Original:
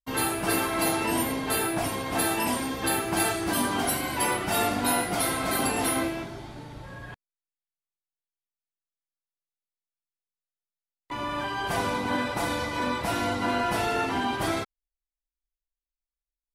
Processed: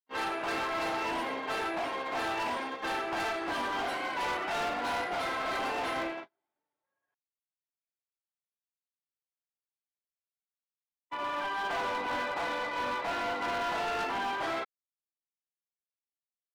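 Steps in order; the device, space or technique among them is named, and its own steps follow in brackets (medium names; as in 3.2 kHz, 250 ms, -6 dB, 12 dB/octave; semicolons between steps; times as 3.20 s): walkie-talkie (band-pass 490–2700 Hz; hard clipper -29.5 dBFS, distortion -10 dB; gate -36 dBFS, range -42 dB)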